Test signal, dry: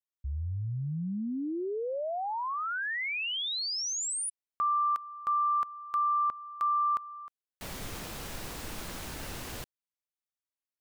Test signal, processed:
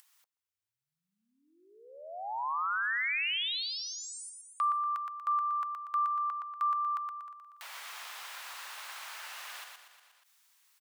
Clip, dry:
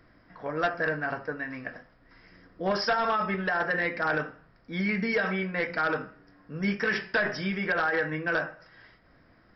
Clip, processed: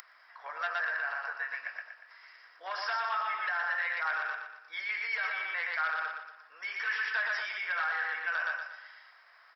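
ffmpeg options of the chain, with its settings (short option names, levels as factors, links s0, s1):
-filter_complex "[0:a]acrossover=split=4000[s0][s1];[s1]acompressor=threshold=0.00355:ratio=4:attack=1:release=60[s2];[s0][s2]amix=inputs=2:normalize=0,aecho=1:1:119|238|357|476|595:0.631|0.259|0.106|0.0435|0.0178,alimiter=limit=0.0794:level=0:latency=1:release=36,acompressor=mode=upward:threshold=0.00251:ratio=2.5:attack=39:release=41:knee=2.83:detection=peak,highpass=f=910:w=0.5412,highpass=f=910:w=1.3066"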